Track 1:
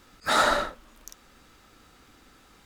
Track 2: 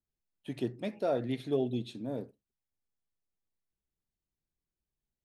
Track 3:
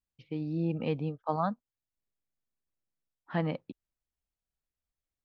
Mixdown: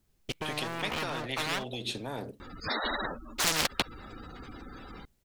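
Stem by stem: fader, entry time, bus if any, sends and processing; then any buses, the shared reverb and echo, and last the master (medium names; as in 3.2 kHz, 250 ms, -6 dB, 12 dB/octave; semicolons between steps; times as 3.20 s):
-5.5 dB, 2.40 s, no send, spectral gate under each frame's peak -15 dB strong
+1.0 dB, 0.00 s, no send, compression, threshold -33 dBFS, peak gain reduction 8.5 dB
+2.0 dB, 0.10 s, no send, high-pass 51 Hz; waveshaping leveller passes 5; auto duck -19 dB, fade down 0.35 s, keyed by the second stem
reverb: none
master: bass shelf 460 Hz +4 dB; spectrum-flattening compressor 10:1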